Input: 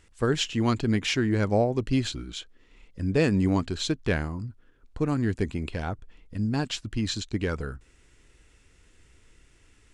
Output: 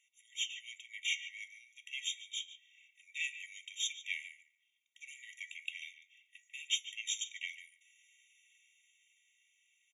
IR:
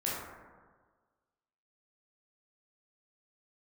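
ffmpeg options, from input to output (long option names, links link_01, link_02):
-filter_complex "[0:a]asplit=2[link_01][link_02];[1:a]atrim=start_sample=2205[link_03];[link_02][link_03]afir=irnorm=-1:irlink=0,volume=-28dB[link_04];[link_01][link_04]amix=inputs=2:normalize=0,dynaudnorm=framelen=370:gausssize=9:maxgain=7.5dB,aecho=1:1:2.2:0.86,asplit=2[link_05][link_06];[link_06]adelay=144,lowpass=frequency=2200:poles=1,volume=-9dB,asplit=2[link_07][link_08];[link_08]adelay=144,lowpass=frequency=2200:poles=1,volume=0.23,asplit=2[link_09][link_10];[link_10]adelay=144,lowpass=frequency=2200:poles=1,volume=0.23[link_11];[link_07][link_09][link_11]amix=inputs=3:normalize=0[link_12];[link_05][link_12]amix=inputs=2:normalize=0,flanger=delay=7.4:depth=7.5:regen=-74:speed=0.3:shape=triangular,afftfilt=real='re*eq(mod(floor(b*sr/1024/1900),2),1)':imag='im*eq(mod(floor(b*sr/1024/1900),2),1)':win_size=1024:overlap=0.75,volume=-5dB"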